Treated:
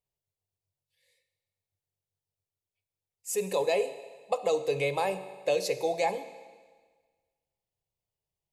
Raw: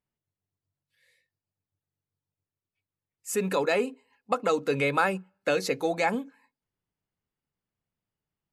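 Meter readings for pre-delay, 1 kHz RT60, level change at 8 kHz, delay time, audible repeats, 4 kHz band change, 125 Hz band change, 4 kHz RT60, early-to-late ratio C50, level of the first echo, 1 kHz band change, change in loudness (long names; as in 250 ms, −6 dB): 13 ms, 1.5 s, 0.0 dB, no echo audible, no echo audible, −1.5 dB, −5.5 dB, 1.5 s, 12.5 dB, no echo audible, −3.5 dB, −2.5 dB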